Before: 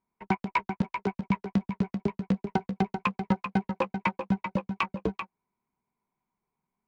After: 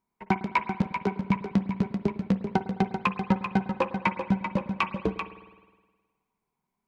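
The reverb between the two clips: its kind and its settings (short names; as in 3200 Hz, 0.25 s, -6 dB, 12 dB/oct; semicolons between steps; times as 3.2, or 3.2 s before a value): spring tank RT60 1.4 s, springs 52 ms, chirp 60 ms, DRR 12 dB; gain +2 dB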